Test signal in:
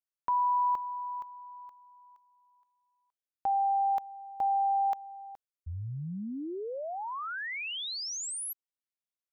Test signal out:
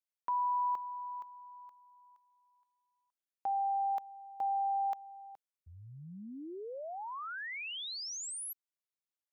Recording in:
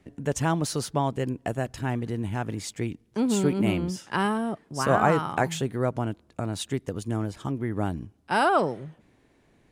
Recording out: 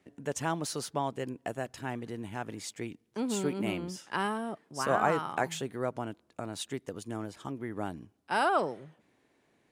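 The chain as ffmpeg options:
ffmpeg -i in.wav -af "highpass=frequency=300:poles=1,volume=-4.5dB" out.wav

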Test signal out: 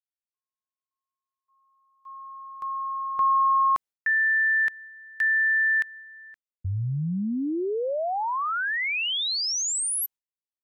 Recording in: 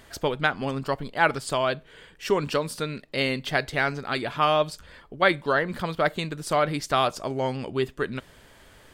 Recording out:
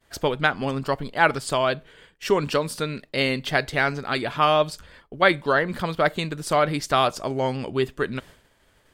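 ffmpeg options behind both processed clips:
ffmpeg -i in.wav -af "agate=range=-33dB:threshold=-43dB:ratio=3:detection=peak,volume=2.5dB" out.wav

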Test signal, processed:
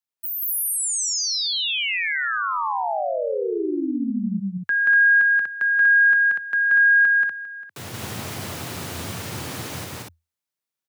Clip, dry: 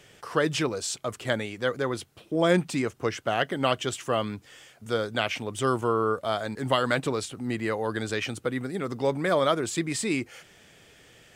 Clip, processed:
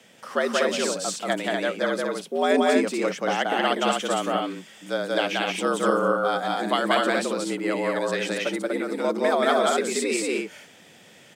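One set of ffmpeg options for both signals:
ffmpeg -i in.wav -af "afreqshift=81,aecho=1:1:180.8|242:0.891|0.708" out.wav

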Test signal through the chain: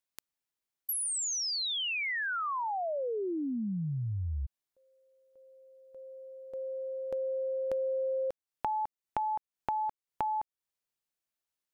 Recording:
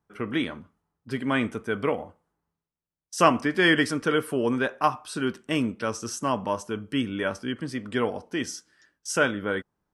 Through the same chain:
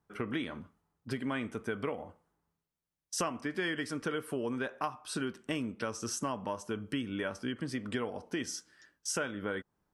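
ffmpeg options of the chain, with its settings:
ffmpeg -i in.wav -af "acompressor=threshold=-32dB:ratio=6" out.wav

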